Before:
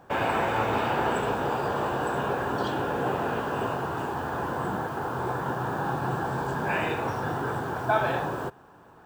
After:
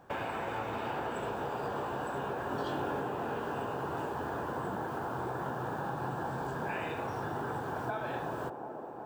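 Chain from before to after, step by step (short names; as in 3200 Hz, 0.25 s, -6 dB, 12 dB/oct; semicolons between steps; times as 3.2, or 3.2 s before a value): compressor, threshold -29 dBFS, peak gain reduction 10.5 dB; 2.49–3 doubler 22 ms -3.5 dB; band-limited delay 0.369 s, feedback 80%, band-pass 460 Hz, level -7 dB; gain -4.5 dB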